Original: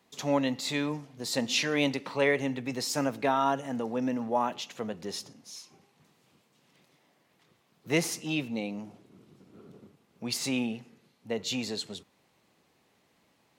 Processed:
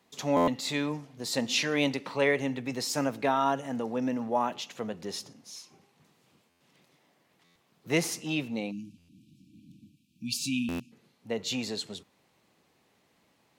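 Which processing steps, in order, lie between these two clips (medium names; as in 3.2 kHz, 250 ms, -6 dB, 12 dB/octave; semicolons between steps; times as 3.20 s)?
spectral selection erased 8.71–10.92 s, 340–2300 Hz; buffer glitch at 0.36/6.49/7.44/8.97/10.68 s, samples 512, times 9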